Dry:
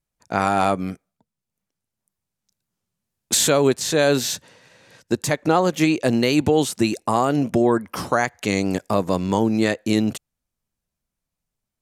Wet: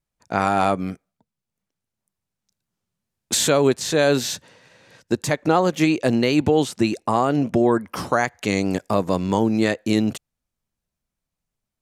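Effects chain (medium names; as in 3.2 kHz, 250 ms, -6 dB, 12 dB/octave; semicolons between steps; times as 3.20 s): treble shelf 7.7 kHz -5.5 dB, from 6.15 s -11.5 dB, from 7.63 s -4 dB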